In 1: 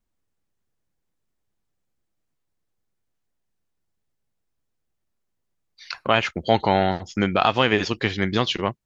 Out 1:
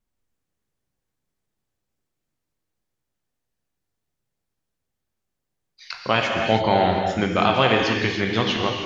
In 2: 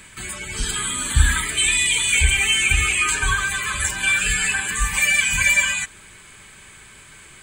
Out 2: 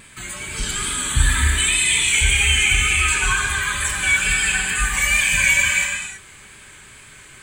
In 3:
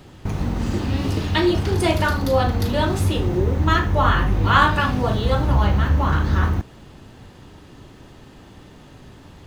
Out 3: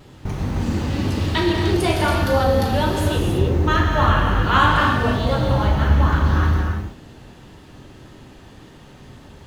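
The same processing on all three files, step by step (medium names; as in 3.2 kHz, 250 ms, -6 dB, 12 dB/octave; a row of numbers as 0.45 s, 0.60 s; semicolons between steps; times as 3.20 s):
wow and flutter 60 cents; gated-style reverb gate 350 ms flat, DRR 0.5 dB; trim -1.5 dB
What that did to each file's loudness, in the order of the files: +1.5 LU, +1.5 LU, +1.0 LU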